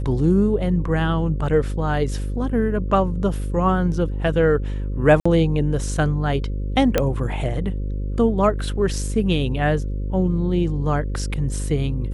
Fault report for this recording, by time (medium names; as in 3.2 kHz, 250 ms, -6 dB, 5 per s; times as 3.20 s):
buzz 50 Hz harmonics 11 -25 dBFS
5.20–5.25 s: dropout 55 ms
6.98 s: pop -4 dBFS